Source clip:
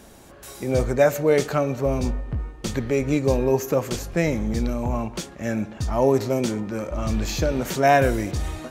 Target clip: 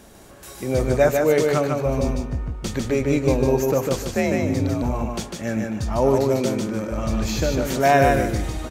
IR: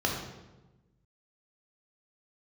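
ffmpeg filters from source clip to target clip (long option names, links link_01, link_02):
-filter_complex "[0:a]aecho=1:1:150|300|450:0.668|0.16|0.0385,asettb=1/sr,asplit=3[link_01][link_02][link_03];[link_01]atrim=end=4.154[link_04];[link_02]atrim=start=4.15:end=4.82,asetpts=PTS-STARTPTS,afade=type=in:duration=0.004:curve=qsin,afade=type=out:start_time=0.666:duration=0.004:curve=qsin,afreqshift=46[link_05];[link_03]atrim=start=4.816[link_06];[link_04][link_05]acrossfade=duration=0.004:curve1=hsin:curve2=qsin[link_07];[link_07][link_06]acrossfade=duration=0.004:curve1=qsin:curve2=hsin"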